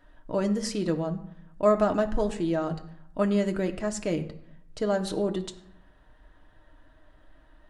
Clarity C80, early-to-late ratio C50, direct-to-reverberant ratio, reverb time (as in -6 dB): 16.0 dB, 13.5 dB, 4.0 dB, 0.75 s